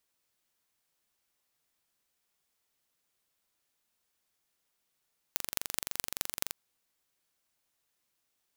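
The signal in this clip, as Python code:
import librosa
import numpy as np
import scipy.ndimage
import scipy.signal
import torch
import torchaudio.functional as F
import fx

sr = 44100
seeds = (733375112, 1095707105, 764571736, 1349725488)

y = fx.impulse_train(sr, length_s=1.18, per_s=23.5, accent_every=5, level_db=-1.5)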